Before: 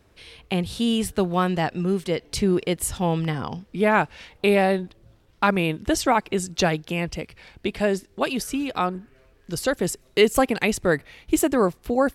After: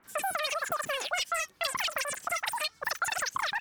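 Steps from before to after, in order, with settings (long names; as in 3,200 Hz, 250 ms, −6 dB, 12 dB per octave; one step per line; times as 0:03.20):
three-band delay without the direct sound lows, highs, mids 90/130 ms, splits 630/2,800 Hz
mid-hump overdrive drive 15 dB, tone 2,700 Hz, clips at −7 dBFS
change of speed 3.37×
downward compressor, threshold −23 dBFS, peak gain reduction 9.5 dB
level −5 dB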